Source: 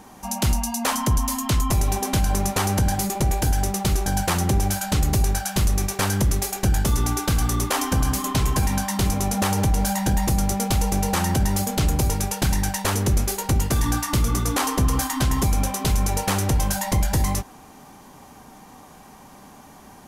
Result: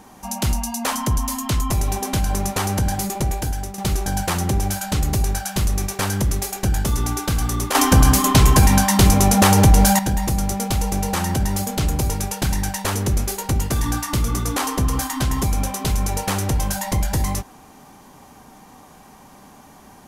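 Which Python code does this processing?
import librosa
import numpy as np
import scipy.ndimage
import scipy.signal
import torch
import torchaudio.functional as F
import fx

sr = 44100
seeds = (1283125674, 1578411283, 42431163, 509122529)

y = fx.edit(x, sr, fx.fade_out_to(start_s=3.19, length_s=0.59, floor_db=-9.0),
    fx.clip_gain(start_s=7.75, length_s=2.24, db=8.5), tone=tone)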